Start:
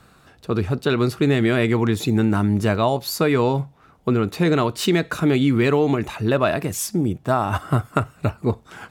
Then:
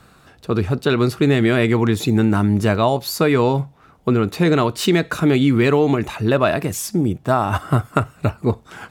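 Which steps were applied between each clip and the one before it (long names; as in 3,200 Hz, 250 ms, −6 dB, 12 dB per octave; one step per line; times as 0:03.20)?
de-essing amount 40%
level +2.5 dB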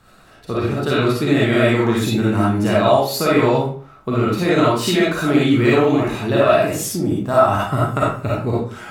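convolution reverb RT60 0.45 s, pre-delay 15 ms, DRR −7 dB
level −5.5 dB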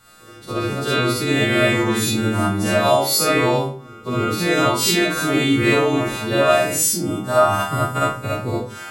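every partial snapped to a pitch grid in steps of 2 semitones
echo ahead of the sound 277 ms −21 dB
level −2 dB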